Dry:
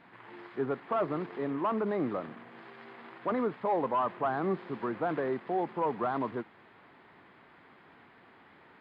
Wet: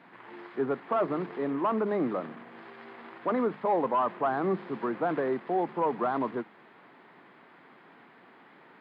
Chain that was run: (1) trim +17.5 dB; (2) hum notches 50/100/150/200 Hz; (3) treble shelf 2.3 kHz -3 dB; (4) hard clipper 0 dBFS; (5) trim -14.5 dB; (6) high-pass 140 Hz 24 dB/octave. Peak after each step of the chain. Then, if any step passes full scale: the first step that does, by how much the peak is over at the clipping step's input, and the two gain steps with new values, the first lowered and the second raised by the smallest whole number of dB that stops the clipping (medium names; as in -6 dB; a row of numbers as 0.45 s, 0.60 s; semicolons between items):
-3.0 dBFS, -2.5 dBFS, -3.0 dBFS, -3.0 dBFS, -17.5 dBFS, -17.0 dBFS; nothing clips